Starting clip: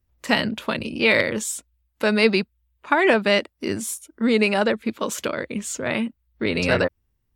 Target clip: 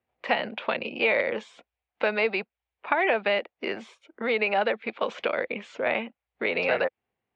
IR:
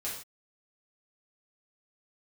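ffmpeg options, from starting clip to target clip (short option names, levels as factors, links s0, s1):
-filter_complex "[0:a]acrossover=split=490|1300[s0][s1][s2];[s0]acompressor=threshold=0.0224:ratio=4[s3];[s1]acompressor=threshold=0.0251:ratio=4[s4];[s2]acompressor=threshold=0.0355:ratio=4[s5];[s3][s4][s5]amix=inputs=3:normalize=0,highpass=250,equalizer=f=290:t=q:w=4:g=-5,equalizer=f=500:t=q:w=4:g=5,equalizer=f=750:t=q:w=4:g=10,equalizer=f=2300:t=q:w=4:g=5,lowpass=f=3400:w=0.5412,lowpass=f=3400:w=1.3066"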